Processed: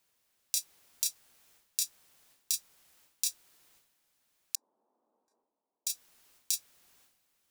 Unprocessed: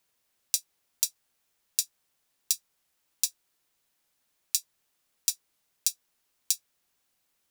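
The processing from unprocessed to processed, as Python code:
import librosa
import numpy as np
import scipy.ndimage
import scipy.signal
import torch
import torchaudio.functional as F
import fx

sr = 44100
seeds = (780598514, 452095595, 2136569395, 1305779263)

y = fx.ellip_bandpass(x, sr, low_hz=230.0, high_hz=950.0, order=3, stop_db=50, at=(4.55, 5.87))
y = fx.transient(y, sr, attack_db=-6, sustain_db=11)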